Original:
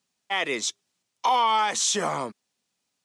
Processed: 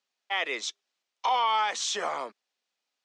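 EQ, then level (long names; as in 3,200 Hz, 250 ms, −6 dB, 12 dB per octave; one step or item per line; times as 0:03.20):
band-pass filter 490–4,900 Hz
parametric band 970 Hz −2.5 dB 0.3 octaves
−2.0 dB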